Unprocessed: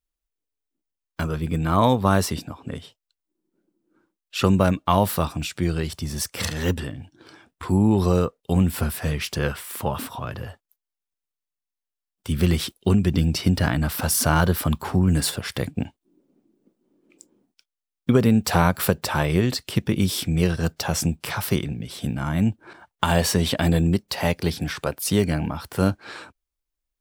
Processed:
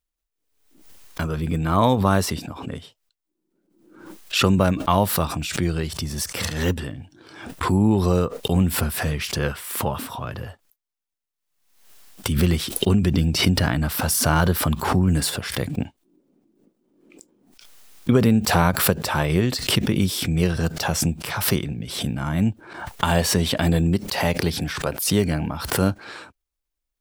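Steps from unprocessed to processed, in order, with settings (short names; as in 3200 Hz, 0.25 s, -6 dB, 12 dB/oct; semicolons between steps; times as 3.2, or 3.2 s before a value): backwards sustainer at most 67 dB/s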